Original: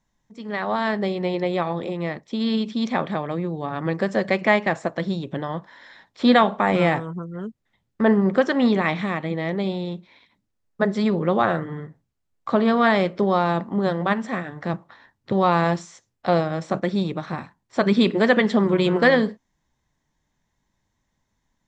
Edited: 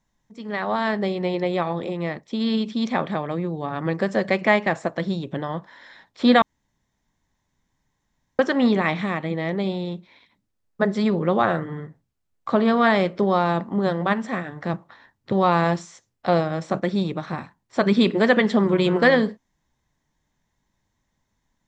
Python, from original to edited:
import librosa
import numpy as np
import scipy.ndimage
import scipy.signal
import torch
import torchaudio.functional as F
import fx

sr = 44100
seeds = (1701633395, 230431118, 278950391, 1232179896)

y = fx.edit(x, sr, fx.room_tone_fill(start_s=6.42, length_s=1.97), tone=tone)